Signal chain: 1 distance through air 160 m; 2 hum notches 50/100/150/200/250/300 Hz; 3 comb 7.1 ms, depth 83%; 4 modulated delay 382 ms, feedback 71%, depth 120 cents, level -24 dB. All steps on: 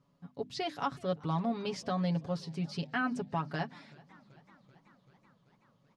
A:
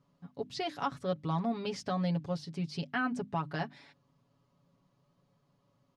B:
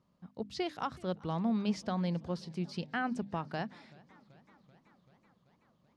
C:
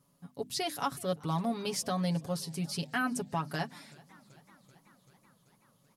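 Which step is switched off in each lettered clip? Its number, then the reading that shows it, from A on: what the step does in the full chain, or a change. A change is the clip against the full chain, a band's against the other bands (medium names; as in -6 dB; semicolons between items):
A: 4, momentary loudness spread change -1 LU; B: 3, 250 Hz band +3.0 dB; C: 1, 8 kHz band +13.5 dB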